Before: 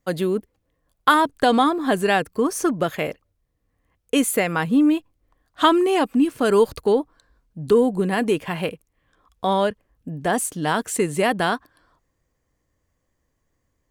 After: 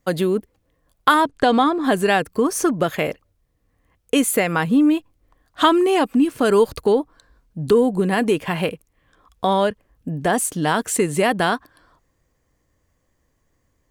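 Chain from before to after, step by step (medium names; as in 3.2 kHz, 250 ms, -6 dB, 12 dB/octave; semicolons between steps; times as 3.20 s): in parallel at +1 dB: compression, threshold -24 dBFS, peak gain reduction 13.5 dB; 1.24–1.84 s: on the sum: distance through air 53 m; trim -1.5 dB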